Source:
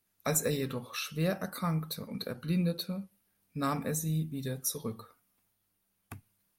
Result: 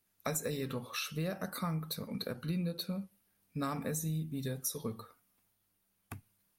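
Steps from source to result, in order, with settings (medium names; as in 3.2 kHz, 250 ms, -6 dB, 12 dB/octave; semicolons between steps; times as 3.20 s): compression, threshold -32 dBFS, peak gain reduction 8.5 dB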